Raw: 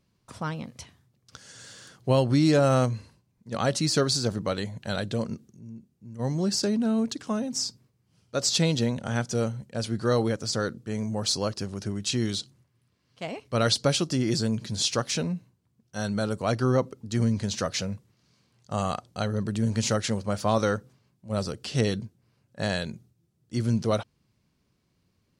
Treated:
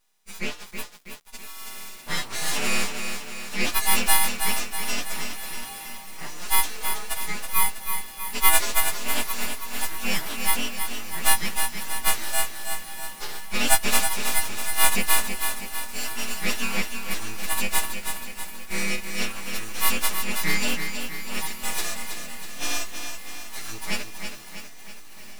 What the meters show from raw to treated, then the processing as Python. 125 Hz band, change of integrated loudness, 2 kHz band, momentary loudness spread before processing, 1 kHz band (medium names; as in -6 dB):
-14.0 dB, +1.5 dB, +10.0 dB, 14 LU, +4.0 dB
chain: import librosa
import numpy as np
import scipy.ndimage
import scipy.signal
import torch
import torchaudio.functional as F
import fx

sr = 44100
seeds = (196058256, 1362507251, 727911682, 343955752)

y = fx.freq_snap(x, sr, grid_st=3)
y = fx.low_shelf_res(y, sr, hz=700.0, db=-13.0, q=3.0)
y = np.abs(y)
y = fx.echo_diffused(y, sr, ms=1610, feedback_pct=50, wet_db=-15.5)
y = fx.echo_crushed(y, sr, ms=323, feedback_pct=55, bits=7, wet_db=-7)
y = F.gain(torch.from_numpy(y), 1.0).numpy()